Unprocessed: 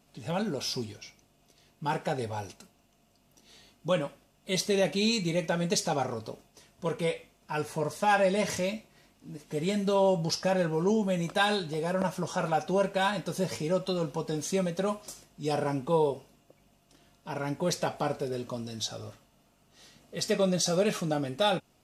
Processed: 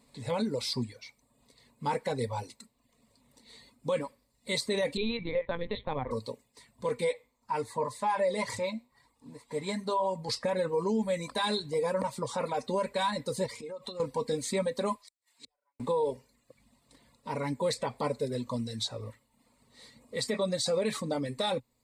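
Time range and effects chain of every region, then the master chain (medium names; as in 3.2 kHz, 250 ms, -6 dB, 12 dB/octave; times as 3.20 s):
4.97–6.11 s: expander -36 dBFS + LPC vocoder at 8 kHz pitch kept
7.12–10.29 s: peaking EQ 920 Hz +7.5 dB 0.87 oct + flange 1 Hz, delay 5.9 ms, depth 4.3 ms, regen +81%
13.46–14.00 s: peaking EQ 81 Hz -7 dB 2.1 oct + compression 12:1, threshold -37 dBFS
14.95–15.80 s: high-pass 1 kHz + inverted gate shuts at -37 dBFS, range -42 dB + loudspeaker Doppler distortion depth 0.13 ms
whole clip: reverb removal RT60 0.68 s; rippled EQ curve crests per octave 0.98, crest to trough 12 dB; peak limiter -21 dBFS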